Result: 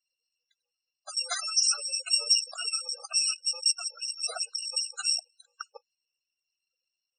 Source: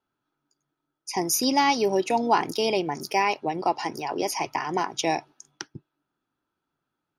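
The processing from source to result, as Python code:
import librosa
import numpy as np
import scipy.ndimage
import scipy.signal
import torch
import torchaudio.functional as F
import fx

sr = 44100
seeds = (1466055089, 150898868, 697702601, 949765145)

y = fx.bit_reversed(x, sr, seeds[0], block=128)
y = fx.spec_topn(y, sr, count=64)
y = fx.brickwall_bandpass(y, sr, low_hz=350.0, high_hz=9400.0)
y = y * librosa.db_to_amplitude(4.5)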